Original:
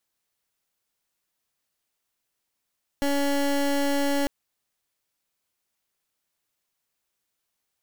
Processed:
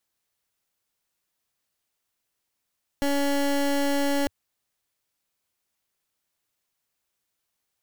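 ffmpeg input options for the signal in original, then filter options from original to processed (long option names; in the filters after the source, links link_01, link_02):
-f lavfi -i "aevalsrc='0.0668*(2*lt(mod(282*t,1),0.23)-1)':duration=1.25:sample_rate=44100"
-af "equalizer=frequency=92:width_type=o:width=0.72:gain=3"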